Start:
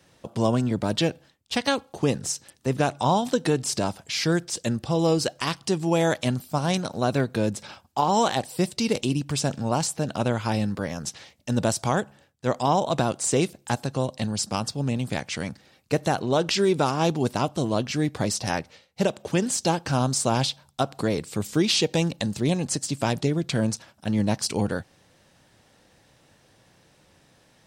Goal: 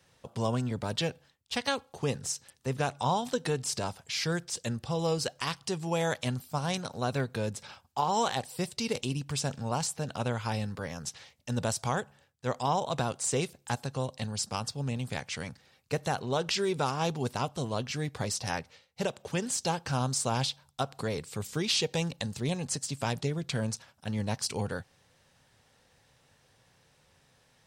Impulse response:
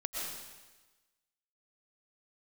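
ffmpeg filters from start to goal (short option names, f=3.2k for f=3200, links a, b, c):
-af "equalizer=f=200:t=o:w=0.33:g=-6,equalizer=f=315:t=o:w=0.33:g=-11,equalizer=f=630:t=o:w=0.33:g=-4,volume=-5dB"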